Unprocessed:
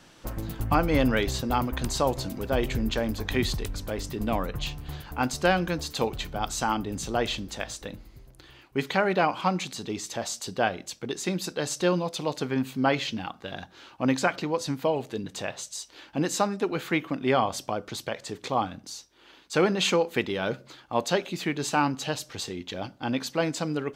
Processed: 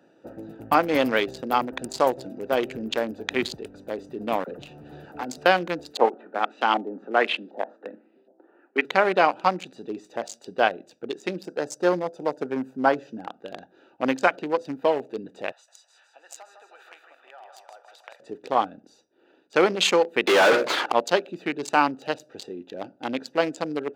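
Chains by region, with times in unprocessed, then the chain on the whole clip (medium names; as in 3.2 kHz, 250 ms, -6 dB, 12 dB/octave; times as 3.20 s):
4.44–5.46 s: waveshaping leveller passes 2 + compression 4:1, threshold -29 dBFS + phase dispersion lows, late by 40 ms, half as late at 660 Hz
5.97–8.85 s: steep high-pass 200 Hz 48 dB/octave + LFO low-pass saw up 1.3 Hz 710–3800 Hz
11.44–13.28 s: high-pass 74 Hz 24 dB/octave + high-order bell 2.9 kHz -10 dB 1.3 oct + band-stop 1.2 kHz, Q 23
15.52–18.20 s: compression 8:1, threshold -28 dBFS + high-pass 880 Hz 24 dB/octave + feedback delay 157 ms, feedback 51%, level -6 dB
20.27–20.92 s: high-pass 220 Hz 6 dB/octave + hum notches 60/120/180/240/300/360/420/480 Hz + overdrive pedal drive 39 dB, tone 2 kHz, clips at -13.5 dBFS
whole clip: local Wiener filter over 41 samples; high-pass 370 Hz 12 dB/octave; trim +6 dB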